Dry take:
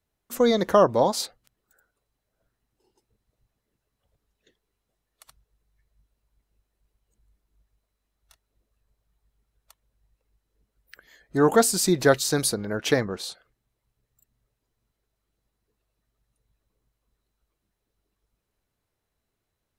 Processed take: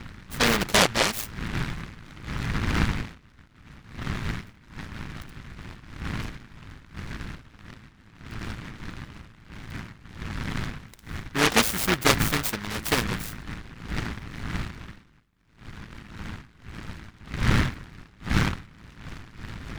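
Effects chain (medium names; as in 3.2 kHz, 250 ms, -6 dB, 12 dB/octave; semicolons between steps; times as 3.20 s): wind noise 190 Hz -30 dBFS; AM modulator 110 Hz, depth 45%; delay time shaken by noise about 1.5 kHz, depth 0.43 ms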